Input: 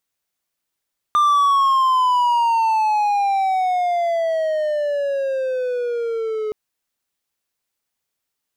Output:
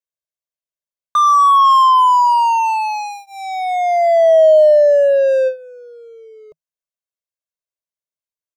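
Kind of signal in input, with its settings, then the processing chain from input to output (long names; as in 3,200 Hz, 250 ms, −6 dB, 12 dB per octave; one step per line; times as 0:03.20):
pitch glide with a swell triangle, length 5.37 s, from 1,200 Hz, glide −18 semitones, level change −9 dB, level −10 dB
thirty-one-band graphic EQ 160 Hz +7 dB, 630 Hz +8 dB, 6,300 Hz +4 dB
noise gate with hold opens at −12 dBFS
comb filter 1.9 ms, depth 99%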